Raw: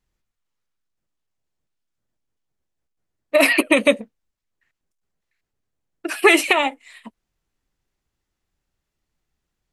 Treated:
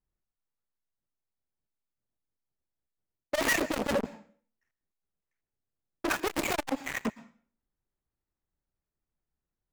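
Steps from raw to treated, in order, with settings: median filter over 15 samples; reverse; compressor 16:1, threshold -24 dBFS, peak gain reduction 15.5 dB; reverse; dynamic EQ 1800 Hz, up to -4 dB, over -44 dBFS, Q 1.1; sample leveller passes 5; wavefolder -20 dBFS; on a send at -21 dB: high shelf 8500 Hz +5 dB + reverb RT60 0.50 s, pre-delay 0.108 s; on the sum: core saturation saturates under 390 Hz

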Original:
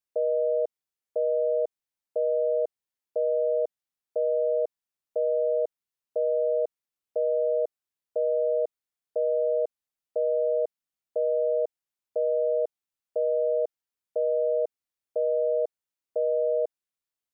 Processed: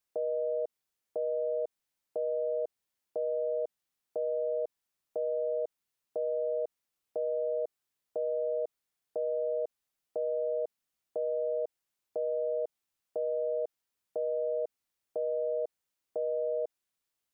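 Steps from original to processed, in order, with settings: limiter -30.5 dBFS, peak gain reduction 11.5 dB; gain +5 dB

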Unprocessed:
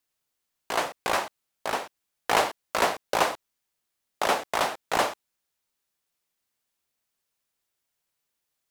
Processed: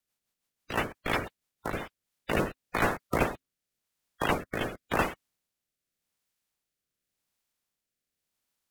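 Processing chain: bin magnitudes rounded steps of 30 dB; frequency shift -270 Hz; rotary speaker horn 6 Hz, later 0.9 Hz, at 1.48

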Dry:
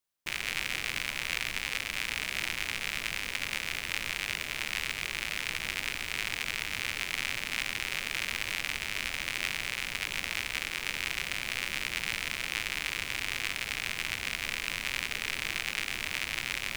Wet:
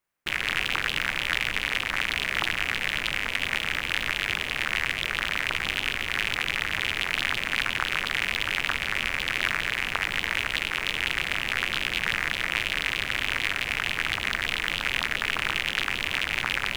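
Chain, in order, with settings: resonant high shelf 2800 Hz -7.5 dB, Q 1.5; Doppler distortion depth 0.89 ms; gain +7.5 dB

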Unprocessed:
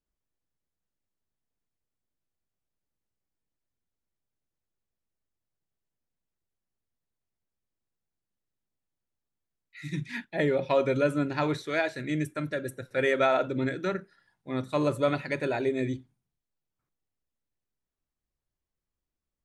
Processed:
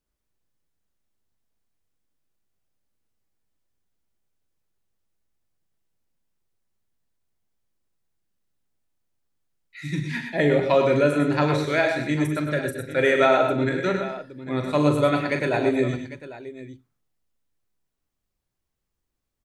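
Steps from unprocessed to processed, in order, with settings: tapped delay 41/101/121/222/800 ms -8.5/-8/-9/-15.5/-15 dB; gain +5 dB

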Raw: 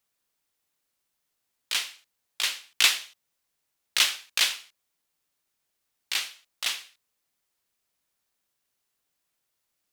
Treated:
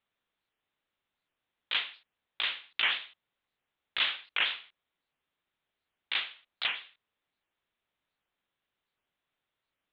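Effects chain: elliptic low-pass 3600 Hz, stop band 40 dB; limiter -16 dBFS, peak gain reduction 8 dB; record warp 78 rpm, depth 250 cents

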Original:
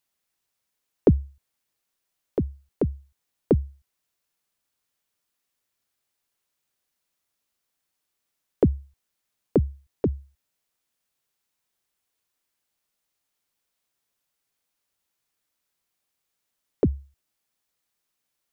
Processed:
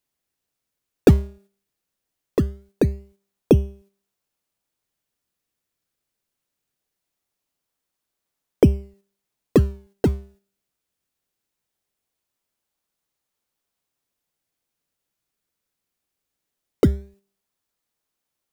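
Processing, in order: de-hum 197.7 Hz, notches 31; gate -55 dBFS, range -6 dB; in parallel at -11 dB: decimation with a swept rate 29×, swing 100% 0.21 Hz; on the sum: gain +3.5 dB

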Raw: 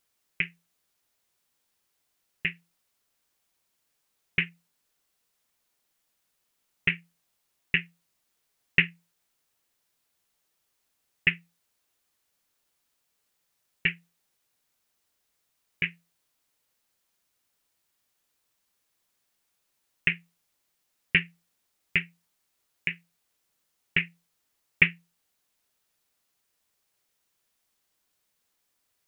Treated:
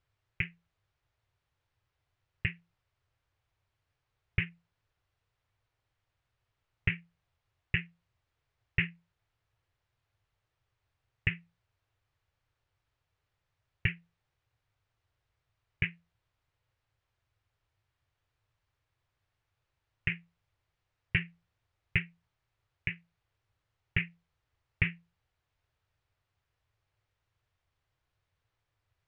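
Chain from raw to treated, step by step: limiter -12.5 dBFS, peak gain reduction 9 dB; Bessel low-pass 2200 Hz, order 2; resonant low shelf 150 Hz +11.5 dB, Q 3

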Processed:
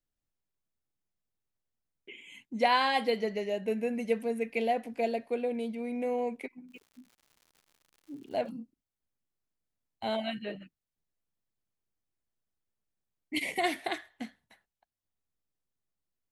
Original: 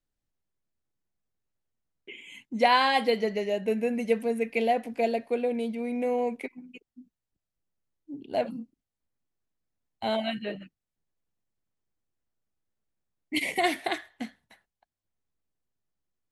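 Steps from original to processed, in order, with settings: 6.68–8.5 crackle 180/s -46 dBFS; gain -4 dB

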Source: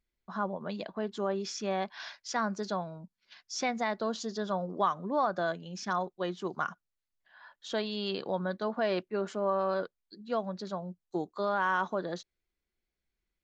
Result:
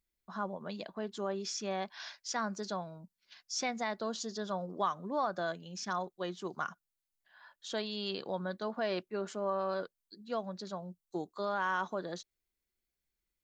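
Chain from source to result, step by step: high shelf 5800 Hz +11 dB; gain -4.5 dB

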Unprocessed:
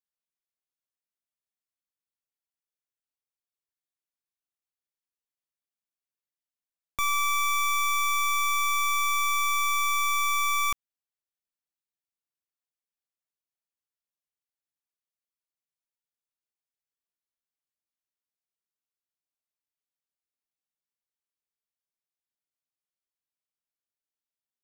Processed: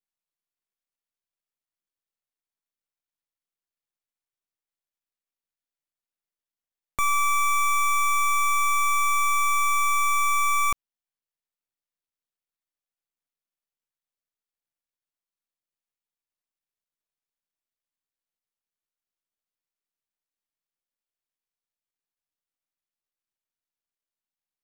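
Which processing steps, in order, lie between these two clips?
switching dead time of 0.12 ms; gain +5 dB

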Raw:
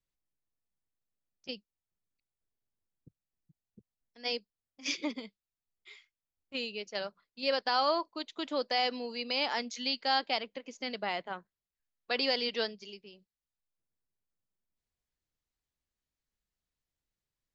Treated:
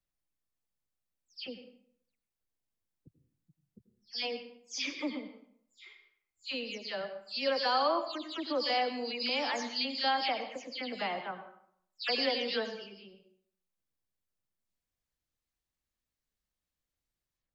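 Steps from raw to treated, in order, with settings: spectral delay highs early, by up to 0.179 s; reverb RT60 0.65 s, pre-delay 81 ms, DRR 8.5 dB

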